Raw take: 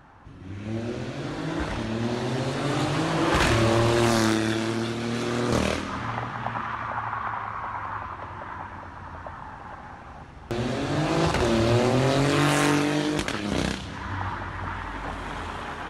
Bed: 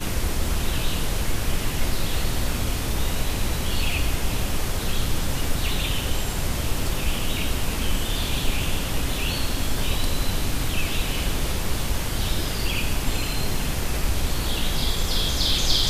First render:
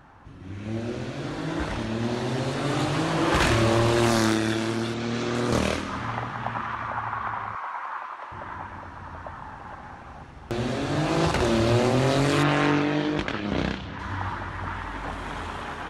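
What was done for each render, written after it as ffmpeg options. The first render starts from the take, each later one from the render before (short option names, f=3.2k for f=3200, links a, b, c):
-filter_complex "[0:a]asettb=1/sr,asplit=3[a][b][c];[a]atrim=end=4.944[d];[b]atrim=start=4.94:end=5.35,asetpts=PTS-STARTPTS,afade=t=in:d=0.004:c=qsin,afade=t=out:st=0.406:d=0.004:c=qsin,lowpass=f=7.5k:w=0.5412,lowpass=f=7.5k:w=1.3066[e];[c]atrim=start=5.346[f];[d][e]acrossfade=d=0.004:c1=hsin:c2=qsin[g];[g][f]acrossfade=d=0.004:c1=qsin:c2=hsin,asettb=1/sr,asplit=3[h][i][j];[h]atrim=end=7.554[k];[i]atrim=start=7.55:end=8.32,asetpts=PTS-STARTPTS,afade=t=in:d=0.004:c=qsin,afade=t=out:st=0.766:d=0.004:c=qsin,highpass=580[l];[j]atrim=start=8.316[m];[k][l]acrossfade=d=0.004:c1=hsin:c2=qsin[n];[n][m]acrossfade=d=0.004:c1=qsin:c2=hsin,asplit=3[o][p][q];[o]afade=t=out:st=12.42:d=0.02[r];[p]lowpass=3.5k,afade=t=in:st=12.42:d=0.02,afade=t=out:st=13.98:d=0.02[s];[q]afade=t=in:st=13.98:d=0.02[t];[r][s][t]amix=inputs=3:normalize=0"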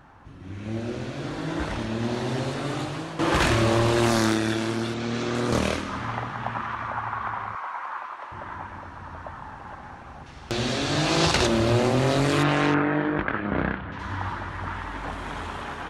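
-filter_complex "[0:a]asettb=1/sr,asplit=3[a][b][c];[a]atrim=end=10.264[d];[b]atrim=start=10.26:end=11.47,asetpts=PTS-STARTPTS,afade=t=in:d=0.004:c=qsin,afade=t=out:st=1.206:d=0.004:c=qsin,equalizer=f=4.9k:t=o:w=2.2:g=10.5[e];[c]atrim=start=11.466[f];[d][e]acrossfade=d=0.004:c1=hsin:c2=qsin[g];[g][f]acrossfade=d=0.004:c1=qsin:c2=hsin,asettb=1/sr,asplit=3[h][i][j];[h]atrim=end=12.744[k];[i]atrim=start=12.74:end=13.92,asetpts=PTS-STARTPTS,afade=t=in:d=0.004:c=qsin,afade=t=out:st=1.176:d=0.004:c=qsin,lowpass=f=1.6k:t=q:w=1.9[l];[j]atrim=start=13.916[m];[k][l]acrossfade=d=0.004:c1=hsin:c2=qsin[n];[n][m]acrossfade=d=0.004:c1=qsin:c2=hsin,asplit=2[o][p];[o]atrim=end=3.19,asetpts=PTS-STARTPTS,afade=t=out:st=2.37:d=0.82:silence=0.251189[q];[p]atrim=start=3.19,asetpts=PTS-STARTPTS,afade=t=in:d=0.004:c=hsin:silence=0.251189[r];[q][r]concat=n=2:v=0:a=1"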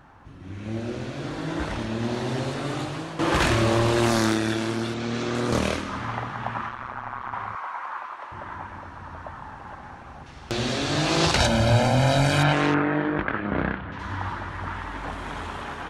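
-filter_complex "[0:a]asettb=1/sr,asplit=3[a][b][c];[a]atrim=end=6.694[d];[b]atrim=start=6.69:end=7.33,asetpts=PTS-STARTPTS,afade=t=in:d=0.004:c=qsin,afade=t=out:st=0.636:d=0.004:c=qsin,tremolo=f=130:d=1[e];[c]atrim=start=7.326[f];[d][e]acrossfade=d=0.004:c1=hsin:c2=qsin[g];[g][f]acrossfade=d=0.004:c1=qsin:c2=hsin,asettb=1/sr,asplit=3[h][i][j];[h]atrim=end=11.374[k];[i]atrim=start=11.37:end=12.53,asetpts=PTS-STARTPTS,afade=t=in:d=0.004:c=qsin,afade=t=out:st=1.156:d=0.004:c=qsin,aecho=1:1:1.3:0.86,atrim=end_sample=51156[l];[j]atrim=start=12.526[m];[k][l]acrossfade=d=0.004:c1=hsin:c2=qsin[n];[n][m]acrossfade=d=0.004:c1=qsin:c2=hsin"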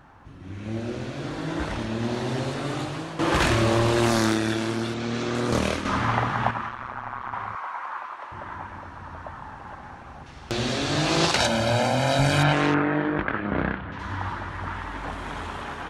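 -filter_complex "[0:a]asettb=1/sr,asplit=3[a][b][c];[a]atrim=end=5.854[d];[b]atrim=start=5.85:end=6.51,asetpts=PTS-STARTPTS,afade=t=in:d=0.004:c=qsin,afade=t=out:st=0.656:d=0.004:c=qsin,acontrast=73[e];[c]atrim=start=6.506[f];[d][e]acrossfade=d=0.004:c1=hsin:c2=qsin[g];[g][f]acrossfade=d=0.004:c1=qsin:c2=hsin,asettb=1/sr,asplit=3[h][i][j];[h]atrim=end=11.254[k];[i]atrim=start=11.25:end=12.19,asetpts=PTS-STARTPTS,afade=t=in:d=0.004:c=qsin,afade=t=out:st=0.936:d=0.004:c=qsin,highpass=f=230:p=1[l];[j]atrim=start=12.186[m];[k][l]acrossfade=d=0.004:c1=hsin:c2=qsin[n];[n][m]acrossfade=d=0.004:c1=qsin:c2=hsin"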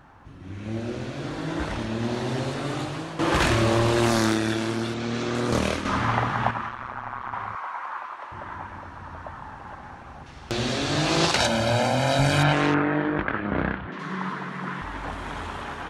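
-filter_complex "[0:a]asettb=1/sr,asplit=3[a][b][c];[a]atrim=end=13.874[d];[b]atrim=start=13.87:end=14.82,asetpts=PTS-STARTPTS,afade=t=in:d=0.004:c=qsin,afade=t=out:st=0.946:d=0.004:c=qsin,afreqshift=92[e];[c]atrim=start=14.816[f];[d][e]acrossfade=d=0.004:c1=hsin:c2=qsin[g];[g][f]acrossfade=d=0.004:c1=qsin:c2=hsin"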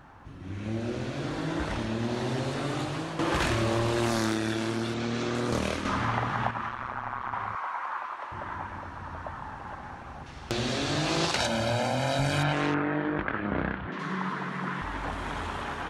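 -af "acompressor=threshold=-28dB:ratio=2"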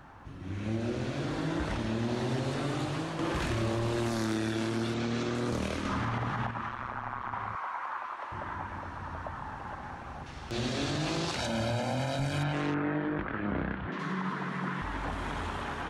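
-filter_complex "[0:a]acrossover=split=370[a][b];[b]acompressor=threshold=-38dB:ratio=1.5[c];[a][c]amix=inputs=2:normalize=0,alimiter=limit=-22.5dB:level=0:latency=1:release=39"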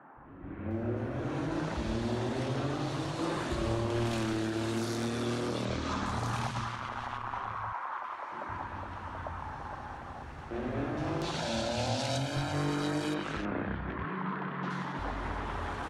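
-filter_complex "[0:a]acrossover=split=180|2000[a][b][c];[a]adelay=170[d];[c]adelay=710[e];[d][b][e]amix=inputs=3:normalize=0"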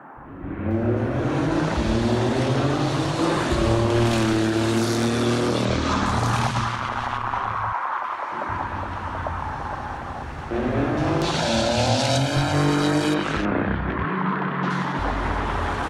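-af "volume=11.5dB"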